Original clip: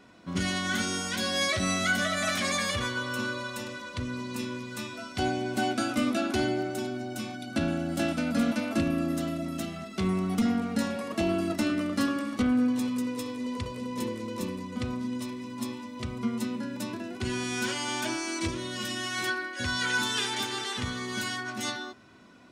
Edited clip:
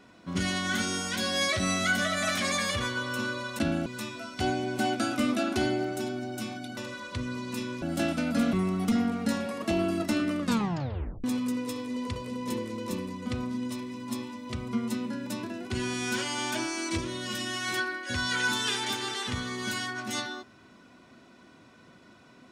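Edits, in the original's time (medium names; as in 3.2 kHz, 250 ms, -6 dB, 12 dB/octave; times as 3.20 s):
3.59–4.64 s: swap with 7.55–7.82 s
8.53–10.03 s: delete
11.90 s: tape stop 0.84 s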